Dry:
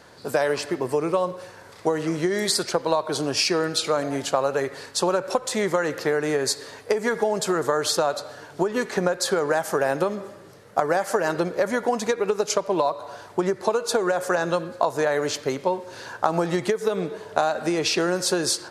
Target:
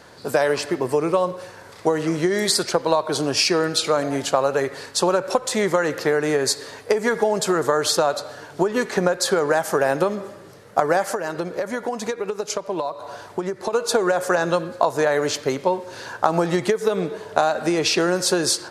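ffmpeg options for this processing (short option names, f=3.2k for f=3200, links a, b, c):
-filter_complex "[0:a]asettb=1/sr,asplit=3[a][b][c];[a]atrim=end=11.084[d];[b]atrim=start=11.08:end=13.73,asetpts=PTS-STARTPTS,afade=t=in:d=0.004:c=qsin,afade=t=out:st=2.646:d=0.004:c=qsin,acompressor=threshold=-27dB:ratio=3[e];[c]atrim=start=13.726[f];[d][e]acrossfade=d=0.004:c1=hsin:c2=qsin[g];[g][f]acrossfade=d=0.004:c1=qsin:c2=hsin,volume=3dB"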